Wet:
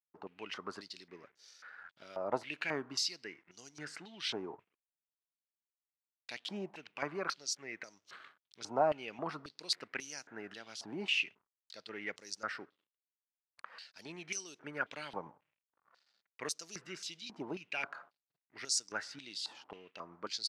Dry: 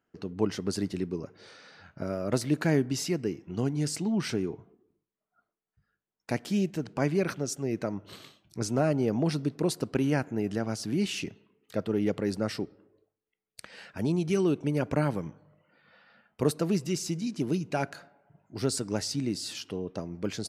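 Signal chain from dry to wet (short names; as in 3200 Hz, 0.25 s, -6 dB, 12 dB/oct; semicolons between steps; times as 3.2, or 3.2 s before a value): backlash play -51.5 dBFS; stepped band-pass 3.7 Hz 880–5900 Hz; gain +7.5 dB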